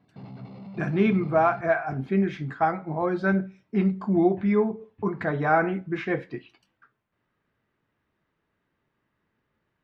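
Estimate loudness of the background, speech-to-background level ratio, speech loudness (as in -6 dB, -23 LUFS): -43.0 LUFS, 18.0 dB, -25.0 LUFS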